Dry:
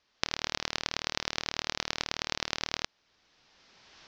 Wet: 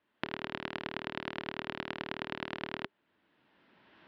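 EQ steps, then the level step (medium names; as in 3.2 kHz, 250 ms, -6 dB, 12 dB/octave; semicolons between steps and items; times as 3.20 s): cabinet simulation 290–3000 Hz, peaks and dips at 500 Hz -8 dB, 750 Hz -8 dB, 1.2 kHz -6 dB, 2.3 kHz -5 dB; tilt EQ -3.5 dB/octave; band-stop 400 Hz, Q 12; +2.5 dB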